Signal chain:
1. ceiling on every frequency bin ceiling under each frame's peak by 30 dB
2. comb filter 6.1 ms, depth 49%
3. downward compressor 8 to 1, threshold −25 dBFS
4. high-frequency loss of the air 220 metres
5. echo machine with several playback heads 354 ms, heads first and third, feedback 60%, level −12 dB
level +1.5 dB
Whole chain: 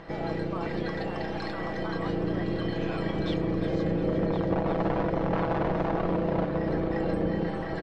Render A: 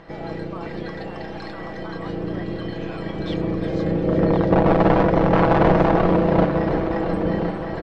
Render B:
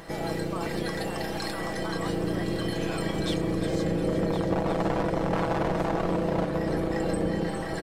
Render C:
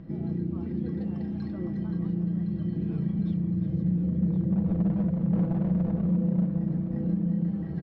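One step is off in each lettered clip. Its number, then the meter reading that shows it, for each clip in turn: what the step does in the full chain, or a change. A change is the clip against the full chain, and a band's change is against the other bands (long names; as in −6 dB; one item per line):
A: 3, average gain reduction 4.5 dB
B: 4, 4 kHz band +5.0 dB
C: 1, 1 kHz band −21.0 dB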